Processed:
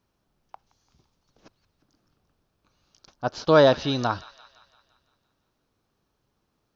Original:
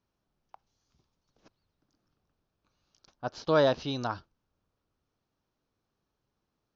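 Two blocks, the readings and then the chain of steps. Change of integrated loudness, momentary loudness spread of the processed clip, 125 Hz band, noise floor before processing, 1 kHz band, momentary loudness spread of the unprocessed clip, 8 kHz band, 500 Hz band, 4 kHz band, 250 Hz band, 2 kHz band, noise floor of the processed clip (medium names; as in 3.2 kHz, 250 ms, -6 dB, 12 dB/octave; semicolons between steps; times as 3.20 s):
+7.5 dB, 16 LU, +7.5 dB, -83 dBFS, +7.5 dB, 16 LU, no reading, +7.5 dB, +7.5 dB, +7.5 dB, +7.5 dB, -75 dBFS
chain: feedback echo behind a high-pass 171 ms, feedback 55%, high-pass 1.5 kHz, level -15.5 dB; trim +7.5 dB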